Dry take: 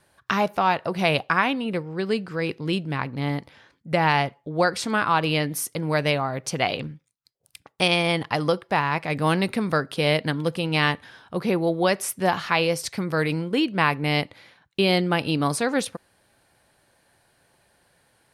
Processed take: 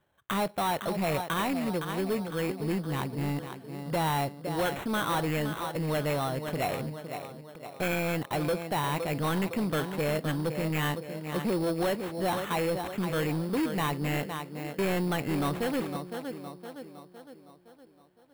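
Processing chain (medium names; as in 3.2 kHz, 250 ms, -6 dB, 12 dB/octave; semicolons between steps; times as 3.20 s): companding laws mixed up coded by A; low-pass 9.6 kHz 24 dB/octave; treble shelf 3.6 kHz -11 dB; on a send: tape echo 512 ms, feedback 53%, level -11 dB, low-pass 2.5 kHz; on the sum: sample-rate reducer 4.8 kHz, jitter 0%; saturation -24 dBFS, distortion -8 dB; peaking EQ 6.1 kHz -9.5 dB 0.7 oct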